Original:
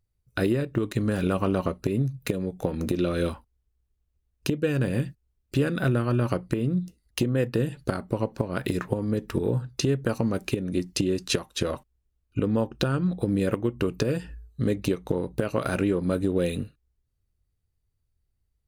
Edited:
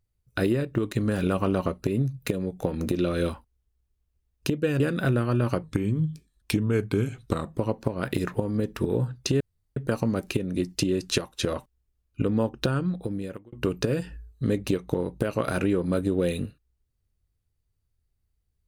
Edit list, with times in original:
4.8–5.59 cut
6.42–8.12 speed 87%
9.94 insert room tone 0.36 s
12.88–13.7 fade out

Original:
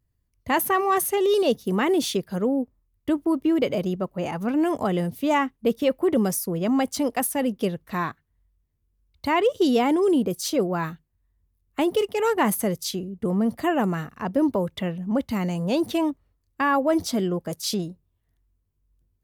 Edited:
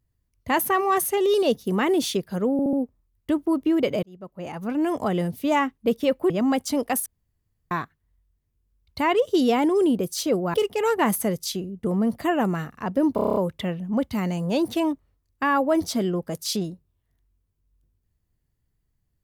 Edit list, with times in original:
2.52 stutter 0.07 s, 4 plays
3.82–5.09 fade in equal-power
6.09–6.57 cut
7.33–7.98 room tone
10.81–11.93 cut
14.54 stutter 0.03 s, 8 plays

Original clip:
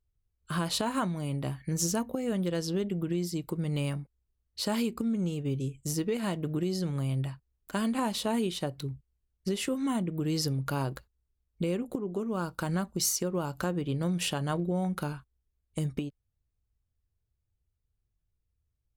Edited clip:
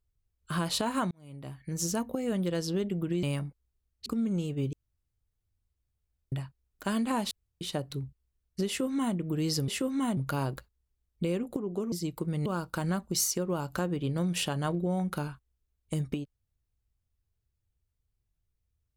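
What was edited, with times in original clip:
1.11–2.08 fade in
3.23–3.77 move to 12.31
4.6–4.94 cut
5.61–7.2 room tone
8.19–8.49 room tone
9.55–10.04 copy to 10.56

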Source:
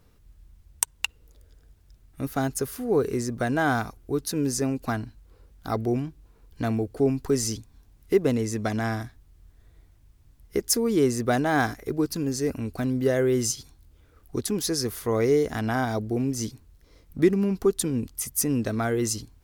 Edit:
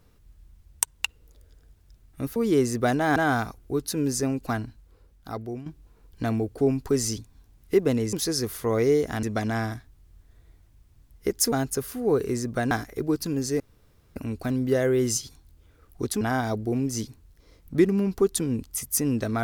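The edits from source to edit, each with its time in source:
2.36–3.55 swap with 10.81–11.61
5–6.05 fade out, to -12 dB
12.5 insert room tone 0.56 s
14.55–15.65 move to 8.52

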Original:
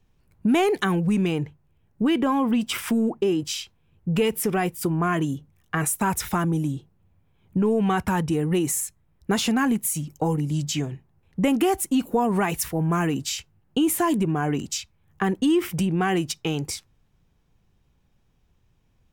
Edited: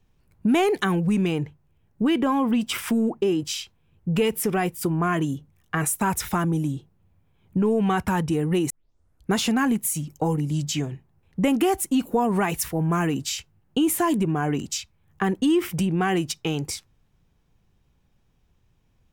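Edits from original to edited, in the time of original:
8.7 tape start 0.63 s

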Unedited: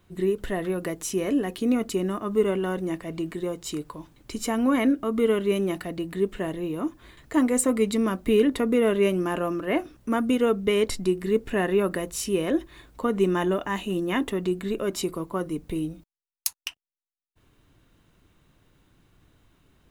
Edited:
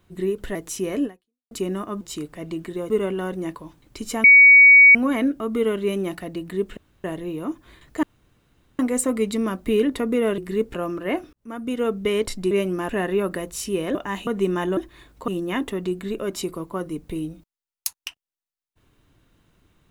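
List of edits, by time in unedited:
0.55–0.89 cut
1.39–1.85 fade out exponential
2.35–3 swap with 3.57–3.89
4.58 add tone 2250 Hz -6.5 dBFS 0.71 s
6.4 insert room tone 0.27 s
7.39 insert room tone 0.76 s
8.98–9.36 swap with 11.13–11.49
9.95–10.56 fade in
12.55–13.06 swap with 13.56–13.88

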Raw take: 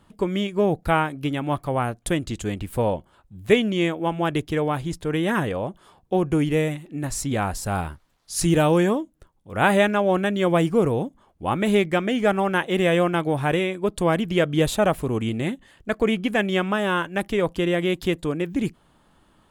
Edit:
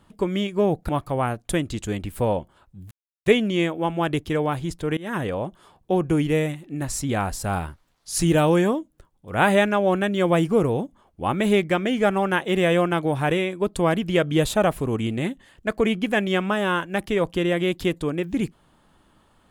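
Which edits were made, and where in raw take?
0.89–1.46 cut
3.48 insert silence 0.35 s
5.19–5.5 fade in, from -23 dB

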